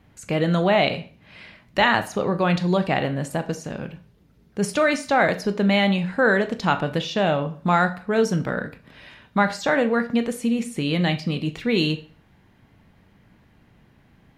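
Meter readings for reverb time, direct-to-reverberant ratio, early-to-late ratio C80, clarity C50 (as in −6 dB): 0.40 s, 9.0 dB, 19.5 dB, 15.0 dB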